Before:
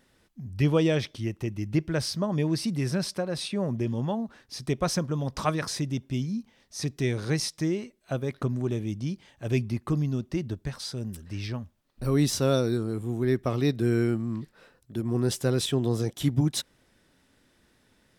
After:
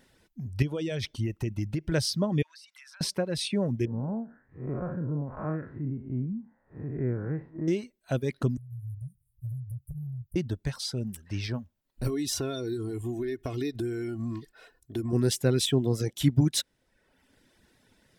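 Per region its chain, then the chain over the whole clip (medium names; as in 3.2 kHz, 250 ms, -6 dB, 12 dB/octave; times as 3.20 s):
0.62–1.92 s: bass shelf 71 Hz +11 dB + compression 16:1, threshold -26 dBFS
2.42–3.01 s: inverse Chebyshev high-pass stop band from 430 Hz, stop band 50 dB + treble shelf 6.5 kHz -10.5 dB + compression, threshold -50 dBFS
3.85–7.68 s: spectral blur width 160 ms + steep low-pass 1.6 kHz
8.57–10.36 s: Chebyshev band-stop 130–9900 Hz, order 5 + compression 10:1, threshold -37 dBFS + comb 1.6 ms, depth 81%
12.07–15.13 s: comb 2.8 ms, depth 63% + compression 8:1, threshold -28 dBFS
whole clip: dynamic bell 900 Hz, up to -5 dB, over -45 dBFS, Q 1.3; reverb removal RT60 0.91 s; band-stop 1.2 kHz, Q 9.2; trim +2.5 dB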